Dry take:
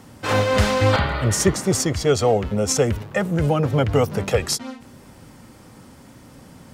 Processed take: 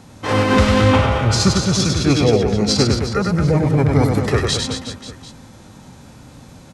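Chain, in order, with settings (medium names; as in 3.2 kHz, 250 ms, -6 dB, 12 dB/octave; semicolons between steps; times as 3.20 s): reverse bouncing-ball echo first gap 100 ms, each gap 1.2×, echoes 5; formant shift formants -5 st; trim +2 dB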